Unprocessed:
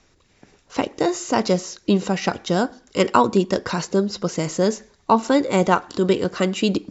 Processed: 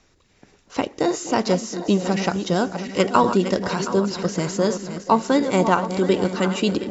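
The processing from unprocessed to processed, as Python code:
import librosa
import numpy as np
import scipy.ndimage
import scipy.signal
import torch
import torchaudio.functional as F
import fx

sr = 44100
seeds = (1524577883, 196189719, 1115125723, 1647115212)

y = fx.reverse_delay_fb(x, sr, ms=360, feedback_pct=60, wet_db=-10.0)
y = fx.echo_stepped(y, sr, ms=240, hz=230.0, octaves=1.4, feedback_pct=70, wet_db=-10.0)
y = y * librosa.db_to_amplitude(-1.0)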